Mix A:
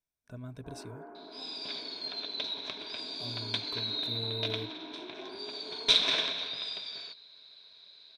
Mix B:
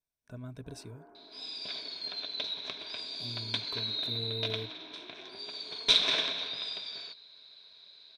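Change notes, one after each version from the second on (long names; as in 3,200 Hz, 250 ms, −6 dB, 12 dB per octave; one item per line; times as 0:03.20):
first sound −8.5 dB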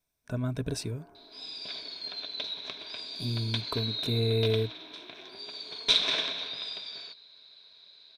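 speech +12.0 dB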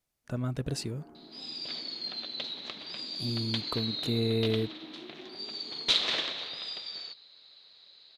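first sound: remove high-pass filter 450 Hz 12 dB per octave
master: remove EQ curve with evenly spaced ripples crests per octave 1.6, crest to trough 8 dB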